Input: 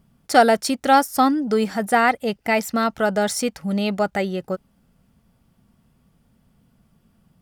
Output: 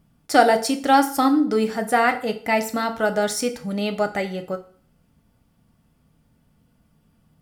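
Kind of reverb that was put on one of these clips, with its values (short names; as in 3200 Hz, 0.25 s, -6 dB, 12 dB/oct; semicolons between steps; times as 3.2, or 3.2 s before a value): FDN reverb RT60 0.48 s, low-frequency decay 0.9×, high-frequency decay 0.9×, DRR 5.5 dB; gain -2 dB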